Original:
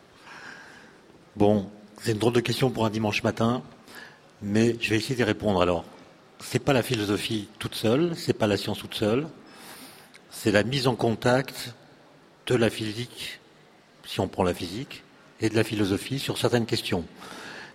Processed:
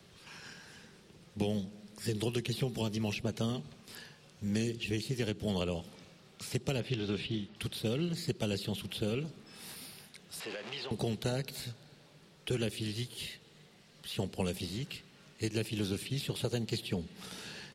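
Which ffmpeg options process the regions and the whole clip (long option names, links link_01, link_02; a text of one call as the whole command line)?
ffmpeg -i in.wav -filter_complex "[0:a]asettb=1/sr,asplit=3[link_01][link_02][link_03];[link_01]atrim=end=6.804[link_04];[link_02]atrim=start=6.8:end=7.56,asetpts=PTS-STARTPTS,afade=type=in:duration=0.004:curve=qsin,afade=type=out:start_time=0.756:duration=0.004:curve=qsin,lowpass=3100,asplit=2[link_05][link_06];[link_06]adelay=15,volume=-12.5dB[link_07];[link_05][link_07]amix=inputs=2:normalize=0,atrim=end_sample=33516[link_08];[link_03]atrim=start=7.556[link_09];[link_04][link_08]acrossfade=duration=0.004:curve1=hsin:curve2=qsin[link_10];[link_10][link_09]acrossfade=duration=0.004:curve1=qsin:curve2=hsin,asettb=1/sr,asplit=3[link_11][link_12][link_13];[link_11]atrim=end=10.404[link_14];[link_12]atrim=start=10.4:end=10.91,asetpts=PTS-STARTPTS,afade=type=in:duration=0.004:curve=qsin,afade=type=out:start_time=0.506:duration=0.004:curve=qsin,aeval=exprs='val(0)+0.5*0.0944*sgn(val(0))':channel_layout=same,highpass=670,lowpass=2400,acompressor=threshold=-29dB:ratio=4:attack=3.2:release=140:knee=1:detection=peak[link_15];[link_13]atrim=start=10.906[link_16];[link_14][link_15]acrossfade=duration=0.004:curve1=hsin:curve2=qsin[link_17];[link_17][link_16]acrossfade=duration=0.004:curve1=qsin:curve2=hsin,firequalizer=gain_entry='entry(190,0);entry(270,-11);entry(410,-6);entry(690,-11);entry(1500,-9);entry(2700,-1);entry(11000,5)':delay=0.05:min_phase=1,acrossover=split=160|850|2000[link_18][link_19][link_20][link_21];[link_18]acompressor=threshold=-40dB:ratio=4[link_22];[link_19]acompressor=threshold=-32dB:ratio=4[link_23];[link_20]acompressor=threshold=-54dB:ratio=4[link_24];[link_21]acompressor=threshold=-40dB:ratio=4[link_25];[link_22][link_23][link_24][link_25]amix=inputs=4:normalize=0,highshelf=frequency=9500:gain=-7.5" out.wav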